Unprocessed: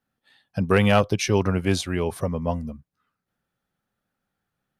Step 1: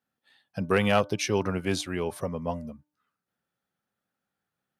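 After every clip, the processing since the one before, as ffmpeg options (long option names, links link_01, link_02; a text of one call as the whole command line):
ffmpeg -i in.wav -af "highpass=frequency=170:poles=1,bandreject=frequency=298.3:width_type=h:width=4,bandreject=frequency=596.6:width_type=h:width=4,bandreject=frequency=894.9:width_type=h:width=4,bandreject=frequency=1193.2:width_type=h:width=4,bandreject=frequency=1491.5:width_type=h:width=4,volume=-3.5dB" out.wav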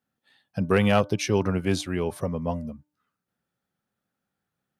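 ffmpeg -i in.wav -af "lowshelf=frequency=340:gain=6" out.wav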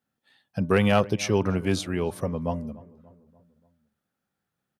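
ffmpeg -i in.wav -filter_complex "[0:a]asplit=2[link_01][link_02];[link_02]adelay=291,lowpass=frequency=1500:poles=1,volume=-20dB,asplit=2[link_03][link_04];[link_04]adelay=291,lowpass=frequency=1500:poles=1,volume=0.54,asplit=2[link_05][link_06];[link_06]adelay=291,lowpass=frequency=1500:poles=1,volume=0.54,asplit=2[link_07][link_08];[link_08]adelay=291,lowpass=frequency=1500:poles=1,volume=0.54[link_09];[link_01][link_03][link_05][link_07][link_09]amix=inputs=5:normalize=0" out.wav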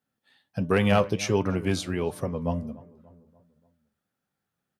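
ffmpeg -i in.wav -af "flanger=delay=6.6:depth=5.4:regen=72:speed=1.4:shape=sinusoidal,volume=3.5dB" out.wav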